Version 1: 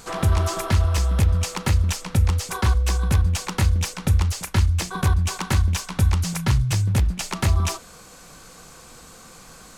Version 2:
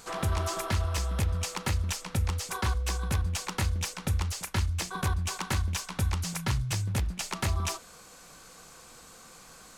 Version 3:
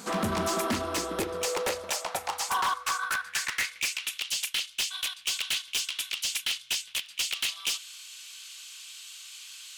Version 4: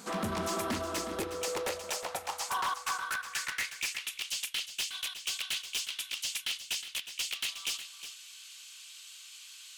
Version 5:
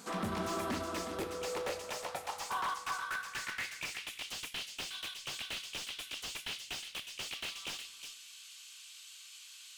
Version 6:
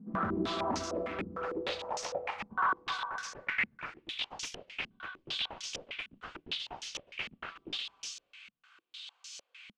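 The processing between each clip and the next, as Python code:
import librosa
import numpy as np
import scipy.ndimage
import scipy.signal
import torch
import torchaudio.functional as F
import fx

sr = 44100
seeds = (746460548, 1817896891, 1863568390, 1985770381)

y1 = fx.low_shelf(x, sr, hz=310.0, db=-5.5)
y1 = F.gain(torch.from_numpy(y1), -5.0).numpy()
y2 = fx.filter_sweep_highpass(y1, sr, from_hz=210.0, to_hz=3000.0, start_s=0.5, end_s=4.18, q=4.1)
y2 = np.clip(10.0 ** (29.0 / 20.0) * y2, -1.0, 1.0) / 10.0 ** (29.0 / 20.0)
y2 = F.gain(torch.from_numpy(y2), 5.0).numpy()
y3 = y2 + 10.0 ** (-11.0 / 20.0) * np.pad(y2, (int(363 * sr / 1000.0), 0))[:len(y2)]
y3 = F.gain(torch.from_numpy(y3), -5.0).numpy()
y4 = fx.room_shoebox(y3, sr, seeds[0], volume_m3=310.0, walls='mixed', distance_m=0.33)
y4 = fx.slew_limit(y4, sr, full_power_hz=63.0)
y4 = F.gain(torch.from_numpy(y4), -3.0).numpy()
y5 = fx.filter_held_lowpass(y4, sr, hz=6.6, low_hz=210.0, high_hz=5900.0)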